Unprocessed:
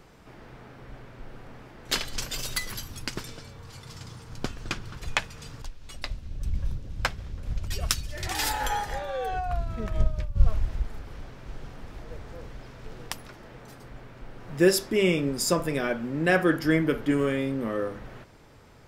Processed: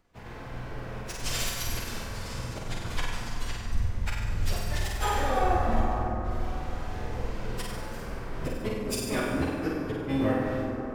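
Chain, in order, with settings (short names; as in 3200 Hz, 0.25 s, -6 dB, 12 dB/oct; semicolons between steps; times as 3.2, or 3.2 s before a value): gate with hold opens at -38 dBFS; notches 50/100/150/200/250/300/350/400/450/500 Hz; in parallel at -2.5 dB: compressor 5:1, threshold -37 dBFS, peak gain reduction 22 dB; on the sum: harmoniser -12 st -5 dB, +3 st -15 dB, +7 st -9 dB; flipped gate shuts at -14 dBFS, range -32 dB; plain phase-vocoder stretch 0.58×; on a send: flutter echo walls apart 8.3 m, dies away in 0.82 s; on the sum: plate-style reverb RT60 4.4 s, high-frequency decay 0.35×, DRR 1 dB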